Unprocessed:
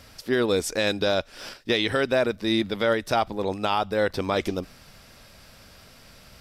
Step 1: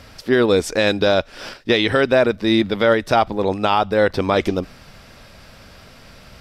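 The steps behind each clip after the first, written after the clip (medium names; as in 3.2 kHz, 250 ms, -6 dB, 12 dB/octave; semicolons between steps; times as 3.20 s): treble shelf 5.7 kHz -10 dB; trim +7.5 dB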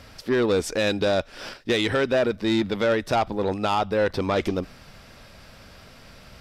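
saturation -11.5 dBFS, distortion -15 dB; trim -3.5 dB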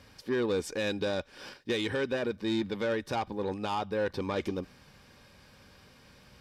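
comb of notches 670 Hz; trim -7.5 dB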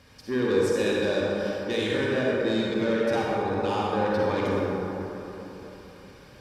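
reverberation RT60 3.5 s, pre-delay 38 ms, DRR -5 dB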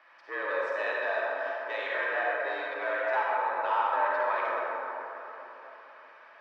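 Butterworth band-pass 1.2 kHz, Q 0.91; frequency shift +76 Hz; trim +3.5 dB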